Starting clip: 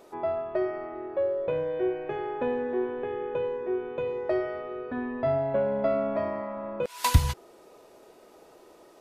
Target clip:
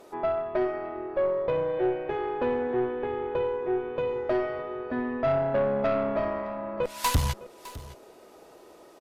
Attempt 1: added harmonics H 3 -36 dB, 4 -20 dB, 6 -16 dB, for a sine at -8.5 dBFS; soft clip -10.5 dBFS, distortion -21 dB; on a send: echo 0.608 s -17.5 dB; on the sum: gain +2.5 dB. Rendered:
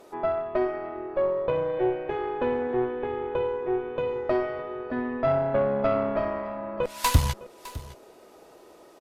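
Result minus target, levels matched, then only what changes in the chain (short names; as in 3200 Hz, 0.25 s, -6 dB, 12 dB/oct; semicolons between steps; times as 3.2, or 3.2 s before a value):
soft clip: distortion -9 dB
change: soft clip -19 dBFS, distortion -12 dB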